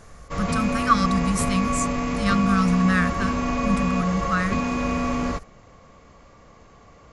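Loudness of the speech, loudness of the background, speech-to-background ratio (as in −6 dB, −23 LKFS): −24.5 LKFS, −25.5 LKFS, 1.0 dB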